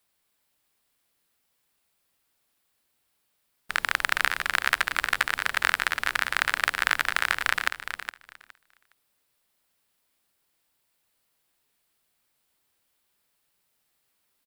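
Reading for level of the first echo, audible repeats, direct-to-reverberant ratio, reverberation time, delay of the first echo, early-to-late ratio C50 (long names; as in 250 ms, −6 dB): −9.0 dB, 2, no reverb audible, no reverb audible, 414 ms, no reverb audible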